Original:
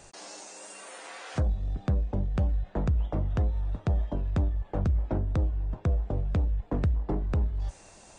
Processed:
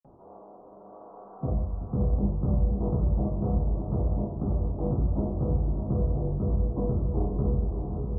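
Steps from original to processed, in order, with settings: half-wave gain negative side -3 dB; steep low-pass 1200 Hz 72 dB/oct; diffused feedback echo 0.611 s, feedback 45%, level -4 dB; reverb RT60 0.70 s, pre-delay 46 ms; upward compressor, threshold -43 dBFS; gain -6.5 dB

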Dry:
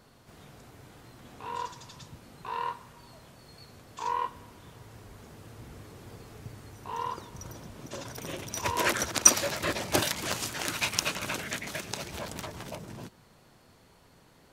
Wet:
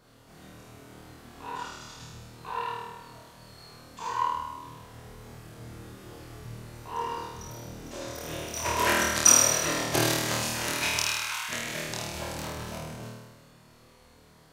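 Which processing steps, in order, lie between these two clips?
10.98–11.49 elliptic high-pass 850 Hz; flutter echo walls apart 4.4 m, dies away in 1.2 s; gain -3 dB

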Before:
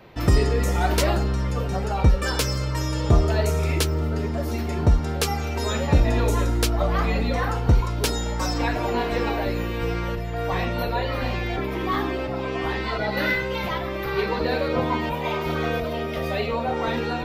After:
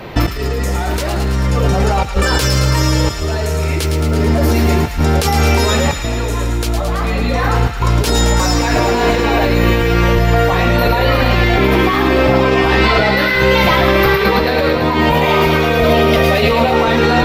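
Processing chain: negative-ratio compressor -28 dBFS, ratio -1; on a send: thin delay 0.11 s, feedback 74%, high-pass 1400 Hz, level -6 dB; on the sum: maximiser +15 dB; gain -1 dB; SBC 192 kbps 48000 Hz

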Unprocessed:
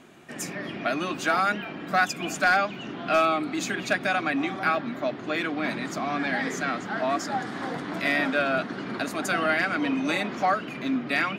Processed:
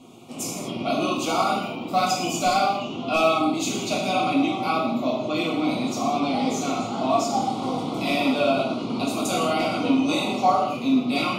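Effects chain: Butterworth band-stop 1700 Hz, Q 1.2; non-linear reverb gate 0.27 s falling, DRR -4.5 dB

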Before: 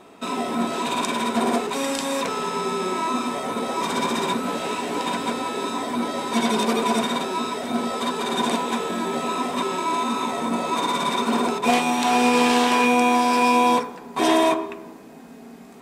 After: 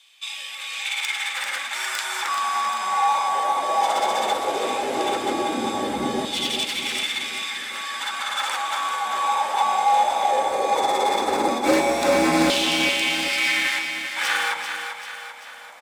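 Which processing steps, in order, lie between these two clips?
one-sided fold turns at -17 dBFS; 10.47–12.48 notch 3200 Hz, Q 5.8; frequency shift -170 Hz; LFO high-pass saw down 0.16 Hz 230–3300 Hz; feedback echo 0.391 s, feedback 52%, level -7.5 dB

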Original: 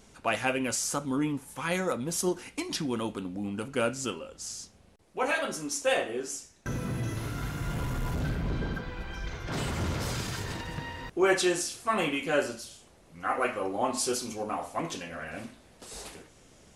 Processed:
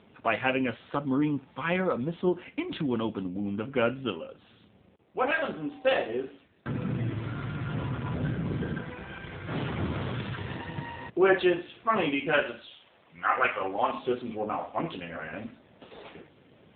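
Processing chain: 5.27–5.96 whine 770 Hz -53 dBFS; 12.33–13.98 tilt shelf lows -7 dB, about 690 Hz; gain +3 dB; AMR-NB 7.4 kbps 8000 Hz

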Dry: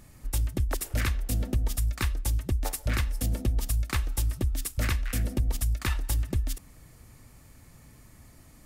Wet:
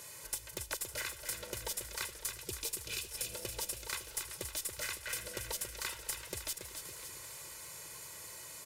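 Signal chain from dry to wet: weighting filter A; spectral gain 2.19–3.12, 480–2300 Hz -14 dB; high shelf 4600 Hz +10 dB; comb 2 ms, depth 96%; compressor 16:1, threshold -39 dBFS, peak gain reduction 19.5 dB; tube stage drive 28 dB, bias 0.4; wrapped overs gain 27 dB; feedback echo 0.279 s, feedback 51%, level -7.5 dB; warbling echo 0.383 s, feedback 72%, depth 73 cents, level -16.5 dB; gain +4.5 dB

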